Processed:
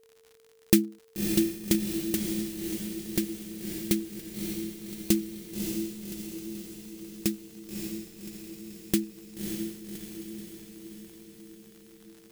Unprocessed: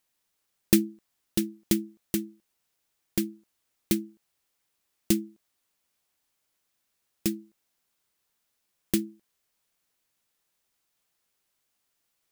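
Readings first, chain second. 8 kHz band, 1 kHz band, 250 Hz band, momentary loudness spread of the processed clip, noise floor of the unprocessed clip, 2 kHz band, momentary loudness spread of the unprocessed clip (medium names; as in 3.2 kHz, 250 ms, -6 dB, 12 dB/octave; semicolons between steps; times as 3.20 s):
+2.0 dB, no reading, +2.0 dB, 17 LU, -78 dBFS, +2.0 dB, 16 LU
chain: echo that smears into a reverb 585 ms, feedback 60%, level -4 dB; whistle 450 Hz -58 dBFS; crackle 97 per s -42 dBFS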